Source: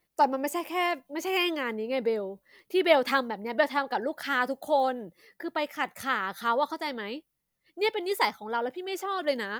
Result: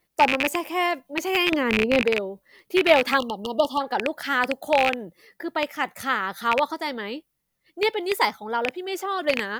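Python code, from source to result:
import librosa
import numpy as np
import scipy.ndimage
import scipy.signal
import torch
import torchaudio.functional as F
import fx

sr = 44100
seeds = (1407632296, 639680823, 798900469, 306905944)

y = fx.rattle_buzz(x, sr, strikes_db=-38.0, level_db=-13.0)
y = fx.low_shelf(y, sr, hz=420.0, db=10.5, at=(1.52, 2.02))
y = fx.brickwall_bandstop(y, sr, low_hz=1300.0, high_hz=2800.0, at=(3.17, 3.8), fade=0.02)
y = y * 10.0 ** (4.0 / 20.0)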